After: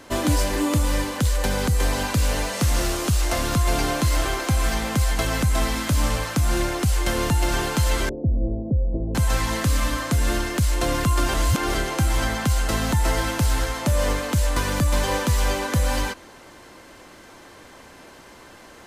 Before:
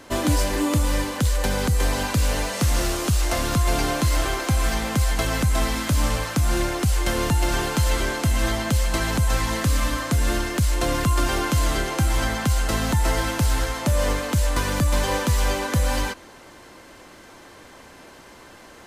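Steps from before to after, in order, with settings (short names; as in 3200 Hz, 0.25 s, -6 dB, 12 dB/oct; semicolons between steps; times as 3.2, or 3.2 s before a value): 8.09–9.15 steep low-pass 560 Hz 36 dB/oct; 11.34–11.74 reverse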